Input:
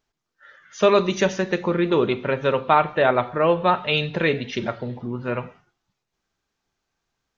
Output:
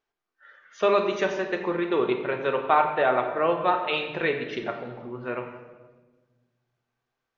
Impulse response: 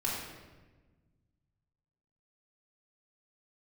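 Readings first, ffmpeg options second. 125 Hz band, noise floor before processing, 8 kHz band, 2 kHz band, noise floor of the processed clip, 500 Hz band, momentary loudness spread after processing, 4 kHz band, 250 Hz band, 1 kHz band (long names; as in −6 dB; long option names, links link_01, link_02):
−12.0 dB, −81 dBFS, can't be measured, −3.5 dB, −84 dBFS, −4.0 dB, 12 LU, −6.5 dB, −6.0 dB, −2.5 dB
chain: -filter_complex "[0:a]bass=frequency=250:gain=-12,treble=frequency=4000:gain=-10,asplit=2[link_01][link_02];[1:a]atrim=start_sample=2205[link_03];[link_02][link_03]afir=irnorm=-1:irlink=0,volume=-7dB[link_04];[link_01][link_04]amix=inputs=2:normalize=0,volume=-6.5dB"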